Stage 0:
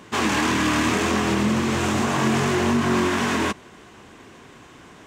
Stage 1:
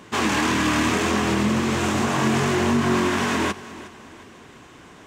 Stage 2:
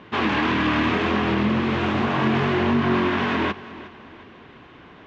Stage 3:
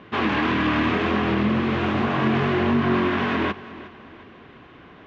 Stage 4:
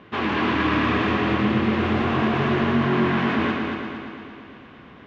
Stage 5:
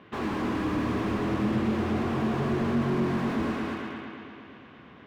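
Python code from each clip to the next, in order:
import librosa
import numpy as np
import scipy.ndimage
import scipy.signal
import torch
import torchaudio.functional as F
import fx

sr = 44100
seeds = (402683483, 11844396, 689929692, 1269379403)

y1 = fx.echo_feedback(x, sr, ms=360, feedback_pct=39, wet_db=-17.0)
y2 = scipy.signal.sosfilt(scipy.signal.butter(4, 3700.0, 'lowpass', fs=sr, output='sos'), y1)
y3 = fx.high_shelf(y2, sr, hz=4900.0, db=-6.5)
y3 = fx.notch(y3, sr, hz=900.0, q=15.0)
y4 = fx.echo_heads(y3, sr, ms=115, heads='first and second', feedback_pct=61, wet_db=-7)
y4 = F.gain(torch.from_numpy(y4), -2.0).numpy()
y5 = scipy.signal.sosfilt(scipy.signal.butter(2, 63.0, 'highpass', fs=sr, output='sos'), y4)
y5 = fx.slew_limit(y5, sr, full_power_hz=44.0)
y5 = F.gain(torch.from_numpy(y5), -4.5).numpy()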